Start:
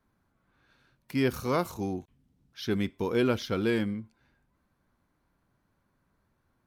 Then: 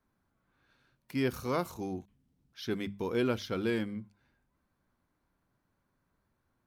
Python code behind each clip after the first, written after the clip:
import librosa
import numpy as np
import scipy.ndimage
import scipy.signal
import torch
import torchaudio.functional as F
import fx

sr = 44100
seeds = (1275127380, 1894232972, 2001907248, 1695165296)

y = fx.hum_notches(x, sr, base_hz=50, count=4)
y = y * librosa.db_to_amplitude(-4.0)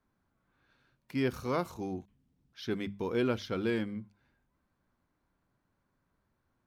y = fx.high_shelf(x, sr, hz=8200.0, db=-9.0)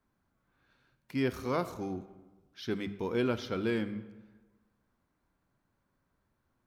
y = fx.rev_freeverb(x, sr, rt60_s=1.3, hf_ratio=0.65, predelay_ms=5, drr_db=13.0)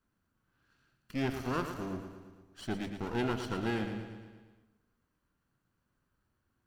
y = fx.lower_of_two(x, sr, delay_ms=0.68)
y = fx.echo_feedback(y, sr, ms=114, feedback_pct=58, wet_db=-9)
y = y * librosa.db_to_amplitude(-1.5)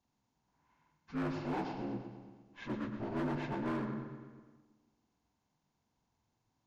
y = fx.partial_stretch(x, sr, pct=75)
y = fx.echo_filtered(y, sr, ms=163, feedback_pct=51, hz=2000.0, wet_db=-16)
y = np.clip(10.0 ** (31.5 / 20.0) * y, -1.0, 1.0) / 10.0 ** (31.5 / 20.0)